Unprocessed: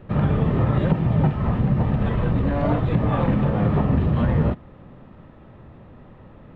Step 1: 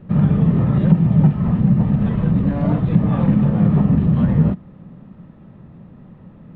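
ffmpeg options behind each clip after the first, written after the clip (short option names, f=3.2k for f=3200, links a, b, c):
-af "equalizer=f=180:t=o:w=0.98:g=14,volume=-4dB"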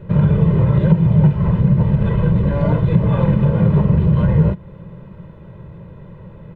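-filter_complex "[0:a]aecho=1:1:2:0.84,asplit=2[a][b];[b]acompressor=threshold=-22dB:ratio=6,volume=-1dB[c];[a][c]amix=inputs=2:normalize=0,volume=-1dB"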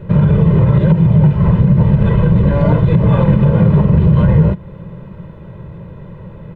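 -af "alimiter=level_in=6.5dB:limit=-1dB:release=50:level=0:latency=1,volume=-1.5dB"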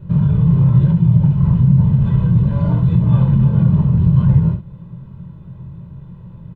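-filter_complex "[0:a]equalizer=f=125:t=o:w=1:g=6,equalizer=f=500:t=o:w=1:g=-11,equalizer=f=2k:t=o:w=1:g=-10,asplit=2[a][b];[b]aecho=0:1:23|67:0.531|0.376[c];[a][c]amix=inputs=2:normalize=0,volume=-7dB"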